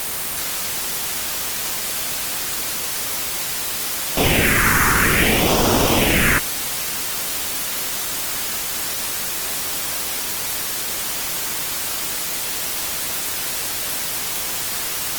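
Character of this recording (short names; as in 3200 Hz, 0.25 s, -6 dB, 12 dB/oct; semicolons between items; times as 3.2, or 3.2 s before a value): aliases and images of a low sample rate 4200 Hz; phasing stages 4, 0.57 Hz, lowest notch 610–2000 Hz; a quantiser's noise floor 6-bit, dither triangular; Opus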